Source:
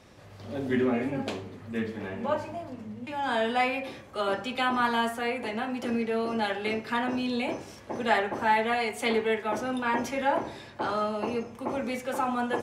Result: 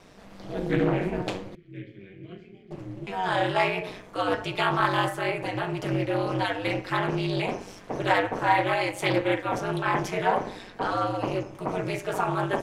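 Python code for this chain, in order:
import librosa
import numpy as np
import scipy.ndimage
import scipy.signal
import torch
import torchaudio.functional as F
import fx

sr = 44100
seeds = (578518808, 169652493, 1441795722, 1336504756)

y = fx.vowel_filter(x, sr, vowel='i', at=(1.55, 2.71))
y = y * np.sin(2.0 * np.pi * 95.0 * np.arange(len(y)) / sr)
y = fx.doppler_dist(y, sr, depth_ms=0.25)
y = y * 10.0 ** (5.0 / 20.0)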